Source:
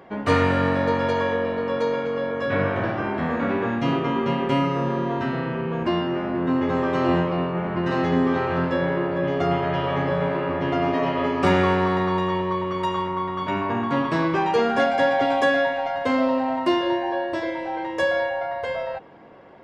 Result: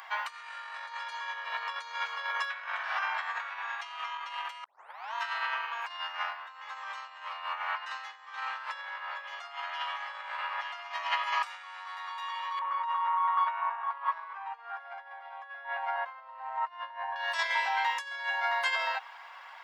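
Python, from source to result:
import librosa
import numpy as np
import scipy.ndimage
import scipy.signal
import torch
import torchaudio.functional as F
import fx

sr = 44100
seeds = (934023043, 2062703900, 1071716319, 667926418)

y = fx.brickwall_highpass(x, sr, low_hz=350.0, at=(10.94, 11.56))
y = fx.lowpass(y, sr, hz=1200.0, slope=12, at=(12.59, 17.16))
y = fx.edit(y, sr, fx.tape_start(start_s=4.64, length_s=0.5), tone=tone)
y = fx.over_compress(y, sr, threshold_db=-28.0, ratio=-0.5)
y = scipy.signal.sosfilt(scipy.signal.butter(6, 890.0, 'highpass', fs=sr, output='sos'), y)
y = fx.high_shelf(y, sr, hz=3500.0, db=9.5)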